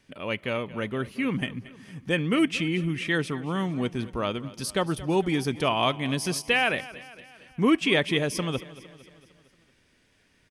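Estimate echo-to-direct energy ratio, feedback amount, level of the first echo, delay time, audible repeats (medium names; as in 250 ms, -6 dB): -16.5 dB, 56%, -18.0 dB, 228 ms, 4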